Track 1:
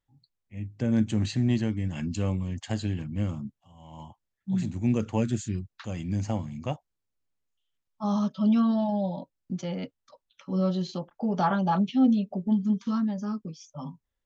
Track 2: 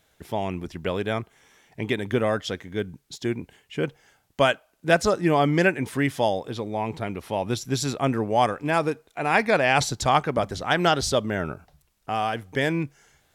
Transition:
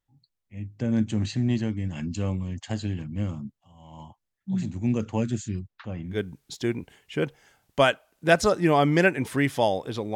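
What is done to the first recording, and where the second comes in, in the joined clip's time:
track 1
5.67–6.20 s: low-pass 4.5 kHz -> 1.1 kHz
6.11 s: go over to track 2 from 2.72 s, crossfade 0.18 s

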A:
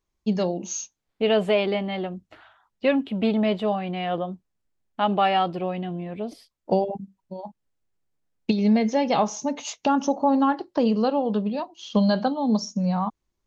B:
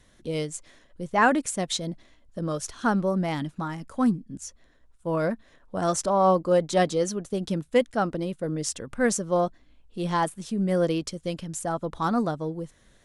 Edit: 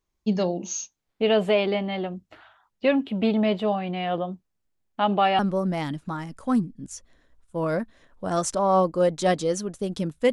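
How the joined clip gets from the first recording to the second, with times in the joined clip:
A
5.39 s: go over to B from 2.90 s

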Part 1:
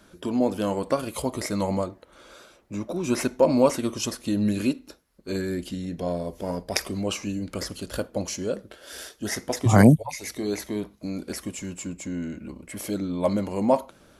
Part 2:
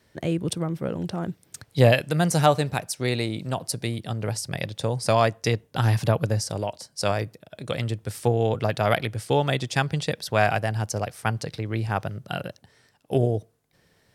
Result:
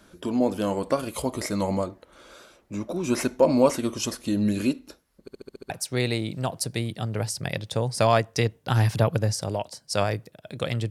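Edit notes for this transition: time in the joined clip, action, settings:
part 1
5.21 s: stutter in place 0.07 s, 7 plays
5.70 s: go over to part 2 from 2.78 s

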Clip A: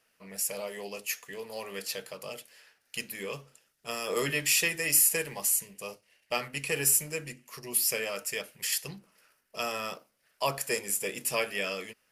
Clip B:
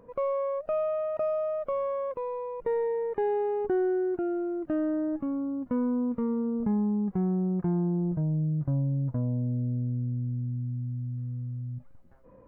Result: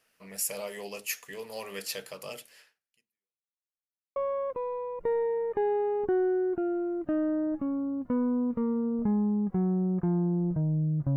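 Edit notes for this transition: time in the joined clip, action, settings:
clip A
2.61–3.60 s: fade out exponential
3.60–4.16 s: mute
4.16 s: go over to clip B from 1.77 s

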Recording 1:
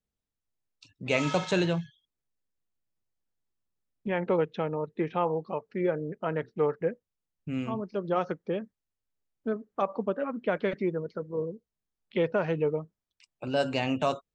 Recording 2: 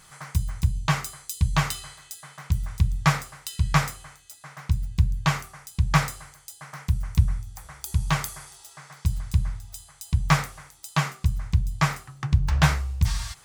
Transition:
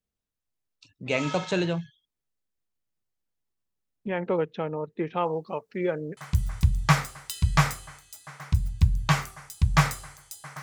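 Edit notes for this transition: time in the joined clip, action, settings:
recording 1
5.17–6.17 s: treble shelf 2.7 kHz +10 dB
6.17 s: go over to recording 2 from 2.34 s

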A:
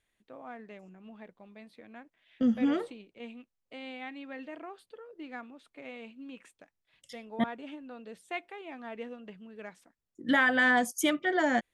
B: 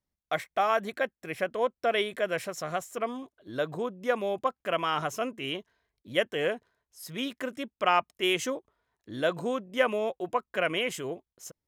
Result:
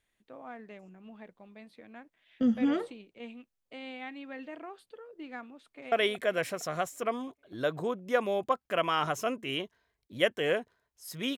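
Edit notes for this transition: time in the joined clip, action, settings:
A
5.55–5.92 s: echo throw 230 ms, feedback 65%, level -8.5 dB
5.92 s: go over to B from 1.87 s

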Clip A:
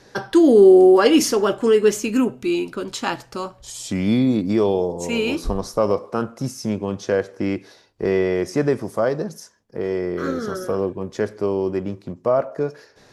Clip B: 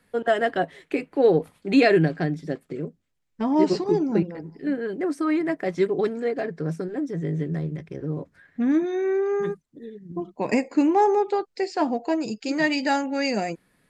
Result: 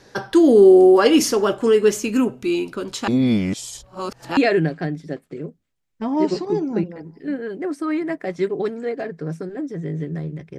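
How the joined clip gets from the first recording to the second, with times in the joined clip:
clip A
3.08–4.37 s: reverse
4.37 s: go over to clip B from 1.76 s

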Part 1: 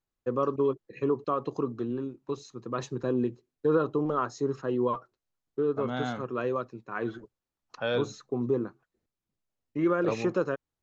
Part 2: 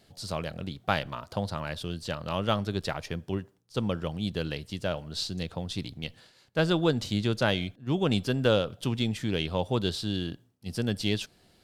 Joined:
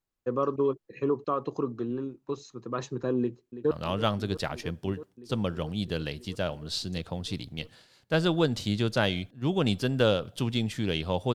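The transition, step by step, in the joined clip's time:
part 1
3.19–3.71 s: echo throw 330 ms, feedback 85%, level -13 dB
3.71 s: go over to part 2 from 2.16 s

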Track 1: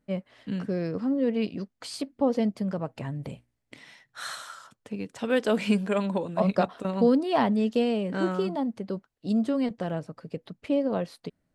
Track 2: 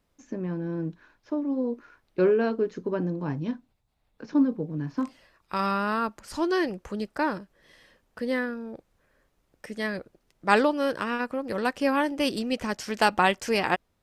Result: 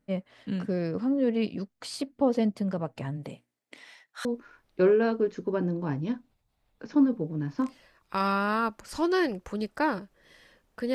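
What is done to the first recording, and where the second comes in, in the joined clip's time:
track 1
3.16–4.25 s: high-pass 150 Hz -> 650 Hz
4.25 s: go over to track 2 from 1.64 s

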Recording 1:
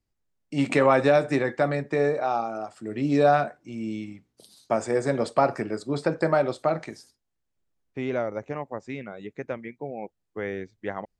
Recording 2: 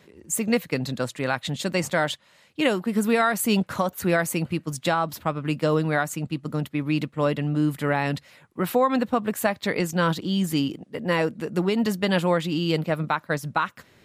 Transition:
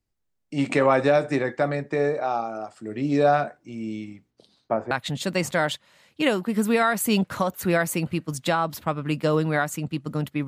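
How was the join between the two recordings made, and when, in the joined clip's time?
recording 1
4.30–4.91 s: low-pass 5.4 kHz -> 1.1 kHz
4.91 s: go over to recording 2 from 1.30 s

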